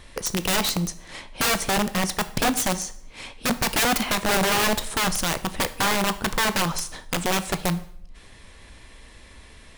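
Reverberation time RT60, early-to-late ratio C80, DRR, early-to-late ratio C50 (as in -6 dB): 0.60 s, 18.5 dB, 11.5 dB, 16.0 dB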